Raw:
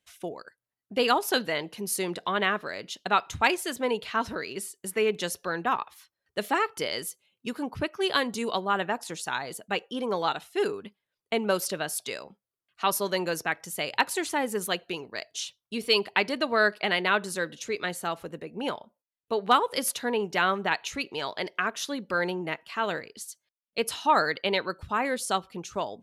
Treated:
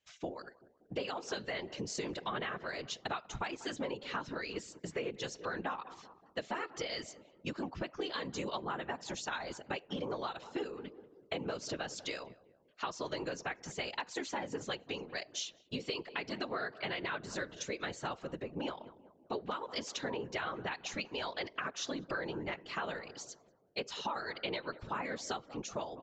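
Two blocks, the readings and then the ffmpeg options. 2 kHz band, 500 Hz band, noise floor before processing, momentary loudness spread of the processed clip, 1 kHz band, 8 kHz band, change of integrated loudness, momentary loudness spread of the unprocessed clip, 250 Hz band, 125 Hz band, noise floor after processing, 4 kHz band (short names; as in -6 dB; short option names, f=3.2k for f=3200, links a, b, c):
-11.5 dB, -11.0 dB, under -85 dBFS, 5 LU, -12.5 dB, -11.0 dB, -11.5 dB, 12 LU, -9.0 dB, -5.5 dB, -66 dBFS, -10.0 dB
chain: -filter_complex "[0:a]alimiter=limit=-13.5dB:level=0:latency=1:release=261,aresample=16000,aresample=44100,asplit=2[a][b];[b]adelay=190,lowpass=f=980:p=1,volume=-19dB,asplit=2[c][d];[d]adelay=190,lowpass=f=980:p=1,volume=0.53,asplit=2[e][f];[f]adelay=190,lowpass=f=980:p=1,volume=0.53,asplit=2[g][h];[h]adelay=190,lowpass=f=980:p=1,volume=0.53[i];[a][c][e][g][i]amix=inputs=5:normalize=0,afftfilt=real='hypot(re,im)*cos(2*PI*random(0))':imag='hypot(re,im)*sin(2*PI*random(1))':win_size=512:overlap=0.75,acompressor=threshold=-38dB:ratio=10,volume=3.5dB"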